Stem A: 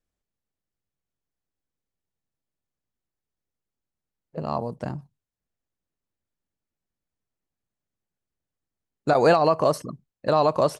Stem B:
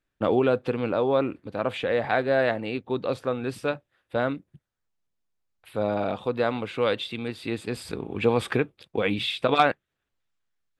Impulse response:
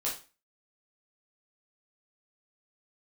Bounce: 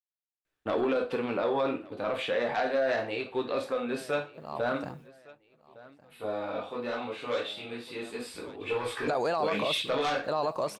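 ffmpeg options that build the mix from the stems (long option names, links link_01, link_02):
-filter_complex "[0:a]acrusher=bits=10:mix=0:aa=0.000001,volume=-5dB,afade=type=in:start_time=4.2:duration=0.67:silence=0.251189,asplit=3[link_01][link_02][link_03];[link_02]volume=-21.5dB[link_04];[1:a]flanger=delay=1.9:depth=5.3:regen=-56:speed=0.36:shape=triangular,aeval=exprs='0.282*sin(PI/2*2*val(0)/0.282)':channel_layout=same,adelay=450,volume=-10.5dB,asplit=3[link_05][link_06][link_07];[link_06]volume=-3.5dB[link_08];[link_07]volume=-18.5dB[link_09];[link_03]apad=whole_len=495750[link_10];[link_05][link_10]sidechaingate=range=-33dB:threshold=-43dB:ratio=16:detection=peak[link_11];[2:a]atrim=start_sample=2205[link_12];[link_08][link_12]afir=irnorm=-1:irlink=0[link_13];[link_04][link_09]amix=inputs=2:normalize=0,aecho=0:1:1160|2320|3480|4640|5800:1|0.33|0.109|0.0359|0.0119[link_14];[link_01][link_11][link_13][link_14]amix=inputs=4:normalize=0,lowshelf=frequency=260:gain=-9.5,alimiter=limit=-20dB:level=0:latency=1:release=16"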